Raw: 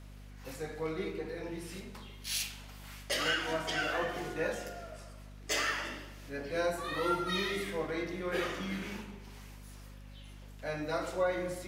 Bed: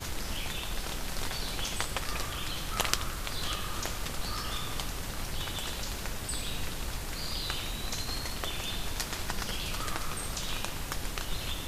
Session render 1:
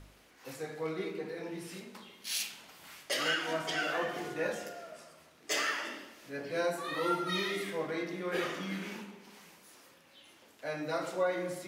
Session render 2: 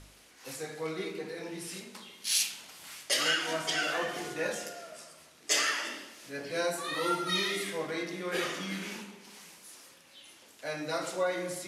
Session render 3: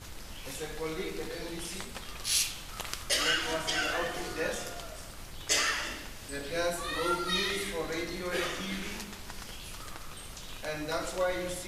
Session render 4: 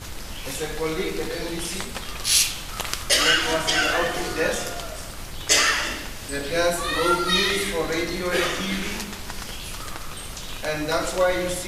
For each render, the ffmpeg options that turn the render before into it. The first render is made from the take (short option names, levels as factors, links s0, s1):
-af "bandreject=f=50:t=h:w=4,bandreject=f=100:t=h:w=4,bandreject=f=150:t=h:w=4,bandreject=f=200:t=h:w=4,bandreject=f=250:t=h:w=4"
-af "lowpass=f=12000:w=0.5412,lowpass=f=12000:w=1.3066,highshelf=f=3400:g=10.5"
-filter_complex "[1:a]volume=0.335[s0];[0:a][s0]amix=inputs=2:normalize=0"
-af "volume=2.99"